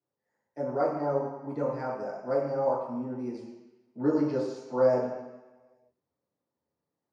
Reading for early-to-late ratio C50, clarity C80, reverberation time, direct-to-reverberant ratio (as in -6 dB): 1.5 dB, 4.5 dB, 1.1 s, -8.5 dB